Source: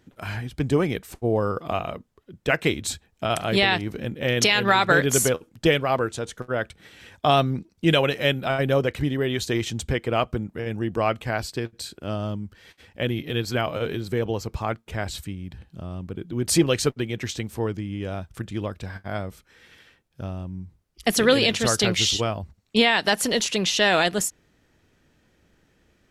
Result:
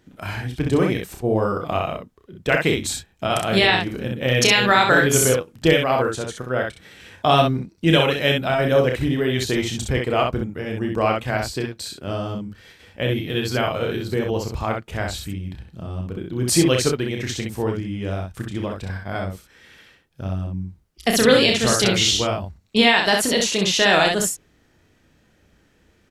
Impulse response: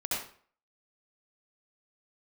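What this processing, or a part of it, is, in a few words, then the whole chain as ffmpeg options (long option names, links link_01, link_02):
slapback doubling: -filter_complex "[0:a]asplit=3[link_01][link_02][link_03];[link_02]adelay=31,volume=-6dB[link_04];[link_03]adelay=64,volume=-4dB[link_05];[link_01][link_04][link_05]amix=inputs=3:normalize=0,volume=1.5dB"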